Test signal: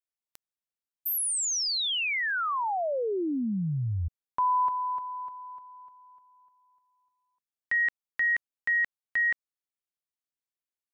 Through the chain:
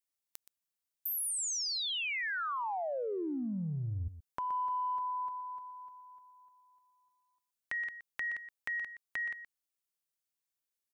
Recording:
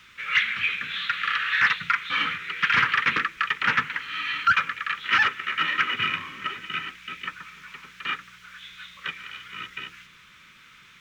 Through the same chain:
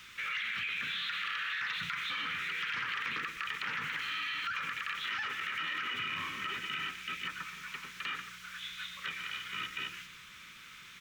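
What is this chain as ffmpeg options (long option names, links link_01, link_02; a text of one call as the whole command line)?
ffmpeg -i in.wav -af "highshelf=frequency=4400:gain=8,acompressor=threshold=-32dB:ratio=16:attack=2.7:release=29:knee=1:detection=peak,aecho=1:1:122:0.237,volume=-2dB" out.wav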